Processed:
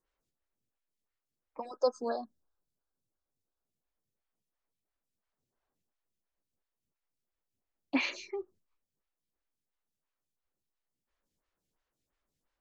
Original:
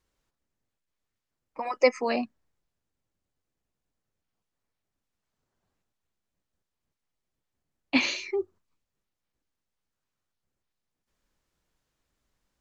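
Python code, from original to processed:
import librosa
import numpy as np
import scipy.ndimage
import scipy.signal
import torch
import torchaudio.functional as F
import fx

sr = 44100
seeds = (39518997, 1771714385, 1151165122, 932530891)

y = fx.spec_erase(x, sr, start_s=1.66, length_s=1.98, low_hz=1700.0, high_hz=3400.0)
y = fx.stagger_phaser(y, sr, hz=2.9)
y = F.gain(torch.from_numpy(y), -3.5).numpy()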